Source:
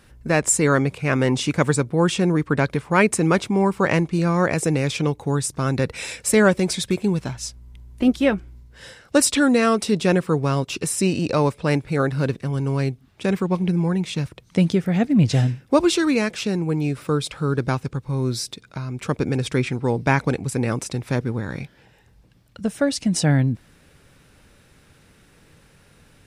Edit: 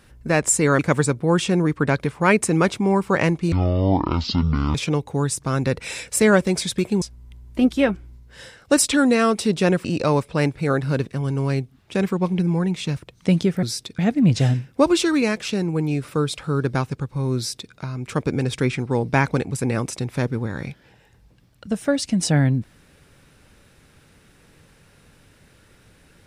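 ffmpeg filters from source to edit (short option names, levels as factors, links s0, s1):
-filter_complex "[0:a]asplit=8[s0][s1][s2][s3][s4][s5][s6][s7];[s0]atrim=end=0.792[s8];[s1]atrim=start=1.488:end=4.224[s9];[s2]atrim=start=4.22:end=4.87,asetpts=PTS-STARTPTS,asetrate=23373,aresample=44100[s10];[s3]atrim=start=4.866:end=7.142[s11];[s4]atrim=start=7.448:end=10.282[s12];[s5]atrim=start=11.138:end=14.922[s13];[s6]atrim=start=18.298:end=18.662[s14];[s7]atrim=start=14.918[s15];[s8][s9]acrossfade=d=0.004:c1=hsin:c2=hsin[s16];[s16][s10]acrossfade=d=0.004:c1=hsin:c2=hsin[s17];[s17][s11]acrossfade=d=0.004:c1=hsin:c2=hsin[s18];[s18][s12]acrossfade=d=0.004:c1=hsin:c2=hsin[s19];[s19][s13]acrossfade=d=0.004:c1=hsin:c2=hsin[s20];[s20][s14]acrossfade=d=0.004:c1=hsin:c2=hsin[s21];[s21][s15]acrossfade=d=0.004:c1=hsin:c2=hsin"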